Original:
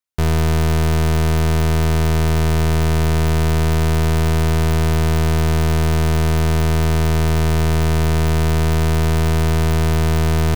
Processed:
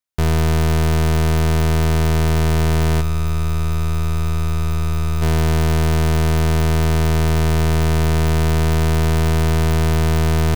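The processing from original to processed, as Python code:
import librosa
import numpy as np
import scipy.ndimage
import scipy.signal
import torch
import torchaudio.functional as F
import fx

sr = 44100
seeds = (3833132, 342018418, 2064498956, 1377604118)

y = fx.comb_fb(x, sr, f0_hz=75.0, decay_s=0.21, harmonics='all', damping=0.0, mix_pct=90, at=(3.0, 5.21), fade=0.02)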